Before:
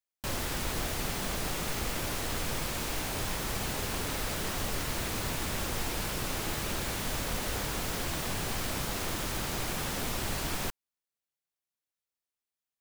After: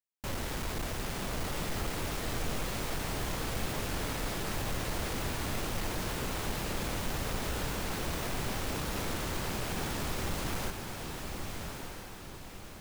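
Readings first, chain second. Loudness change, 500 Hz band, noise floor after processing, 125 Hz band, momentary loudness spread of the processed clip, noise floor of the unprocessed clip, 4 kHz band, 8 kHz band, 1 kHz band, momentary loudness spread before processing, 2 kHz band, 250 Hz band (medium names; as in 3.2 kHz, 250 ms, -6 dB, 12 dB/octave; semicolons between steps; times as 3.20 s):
-2.5 dB, 0.0 dB, -45 dBFS, +0.5 dB, 5 LU, under -85 dBFS, -3.0 dB, -4.5 dB, -1.0 dB, 0 LU, -2.0 dB, 0.0 dB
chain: square wave that keeps the level; echo that smears into a reverb 1193 ms, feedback 44%, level -4.5 dB; trim -7.5 dB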